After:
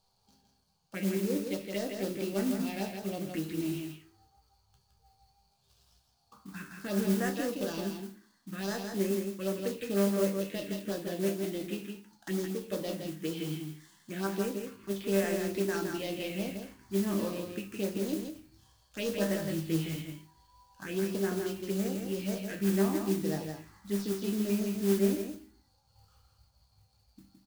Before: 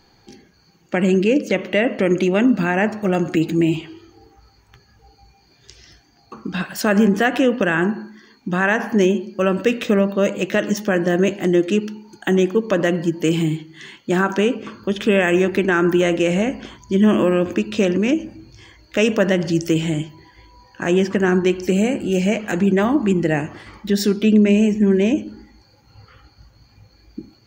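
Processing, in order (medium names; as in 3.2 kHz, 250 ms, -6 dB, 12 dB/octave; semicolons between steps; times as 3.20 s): dead-time distortion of 0.08 ms; peaking EQ 4.5 kHz +5.5 dB 1 oct; chord resonator C2 minor, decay 0.31 s; touch-sensitive phaser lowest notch 320 Hz, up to 4 kHz, full sweep at -21 dBFS; wow and flutter 23 cents; 19.04–19.96 s: doubling 19 ms -3 dB; modulation noise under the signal 15 dB; on a send: delay 165 ms -5.5 dB; on the sum: endings held to a fixed fall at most 170 dB/s; trim -5.5 dB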